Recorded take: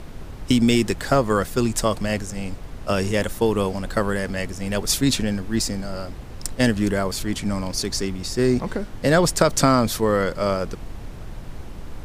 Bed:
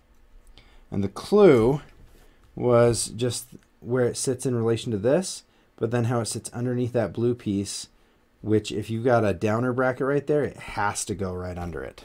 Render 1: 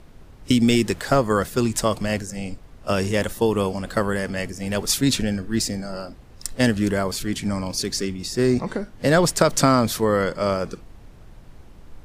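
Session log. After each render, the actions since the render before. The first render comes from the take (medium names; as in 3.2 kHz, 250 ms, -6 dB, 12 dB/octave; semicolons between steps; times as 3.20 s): noise print and reduce 10 dB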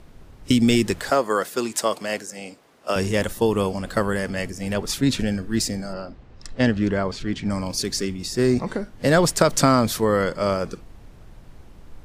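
1.10–2.96 s: high-pass 340 Hz; 4.73–5.19 s: treble shelf 4.3 kHz -9 dB; 5.93–7.50 s: distance through air 140 m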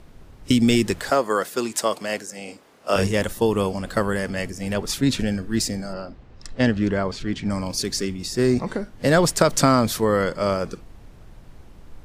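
2.45–3.07 s: doubling 30 ms -2 dB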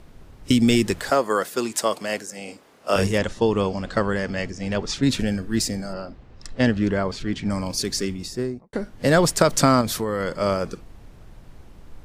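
3.18–5.03 s: low-pass 6.7 kHz 24 dB/octave; 8.11–8.73 s: studio fade out; 9.81–10.40 s: compression, threshold -20 dBFS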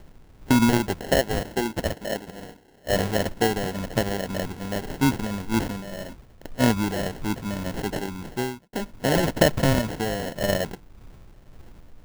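harmonic tremolo 1.8 Hz, depth 50%, crossover 1.2 kHz; sample-rate reducer 1.2 kHz, jitter 0%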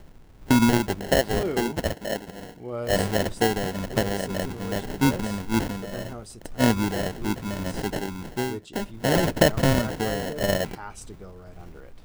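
add bed -14 dB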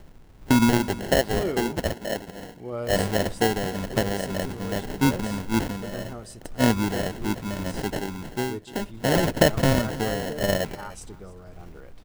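delay 299 ms -19 dB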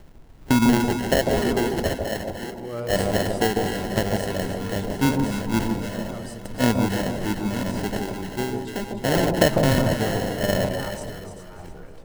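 chunks repeated in reverse 509 ms, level -10.5 dB; echo whose repeats swap between lows and highs 149 ms, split 1 kHz, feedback 55%, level -3.5 dB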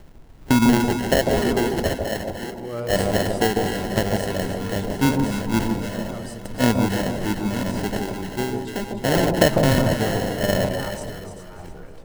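trim +1.5 dB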